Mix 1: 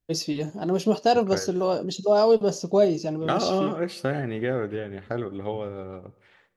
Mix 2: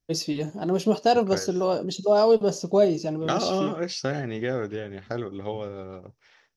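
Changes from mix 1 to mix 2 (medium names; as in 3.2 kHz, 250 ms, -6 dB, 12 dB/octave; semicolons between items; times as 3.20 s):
second voice: add resonant low-pass 5.6 kHz, resonance Q 7.6; reverb: off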